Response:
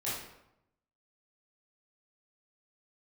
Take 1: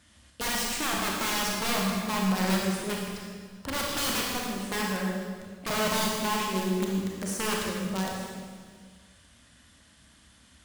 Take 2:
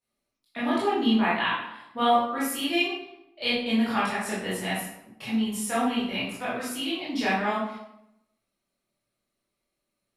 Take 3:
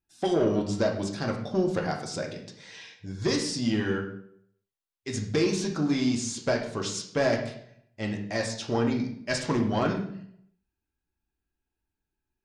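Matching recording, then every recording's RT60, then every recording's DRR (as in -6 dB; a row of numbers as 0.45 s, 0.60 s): 2; 1.7 s, 0.85 s, 0.65 s; -2.0 dB, -10.0 dB, 0.5 dB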